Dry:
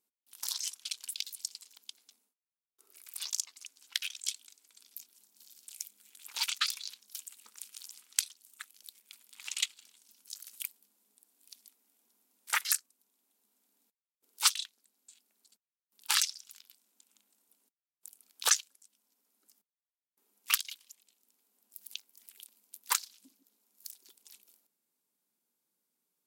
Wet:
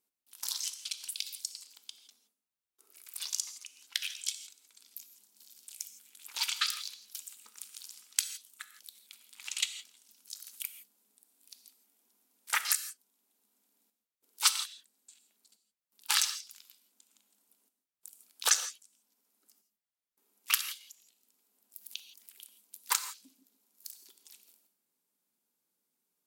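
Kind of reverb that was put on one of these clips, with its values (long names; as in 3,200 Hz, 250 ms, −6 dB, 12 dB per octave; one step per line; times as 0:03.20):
reverb whose tail is shaped and stops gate 190 ms flat, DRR 9.5 dB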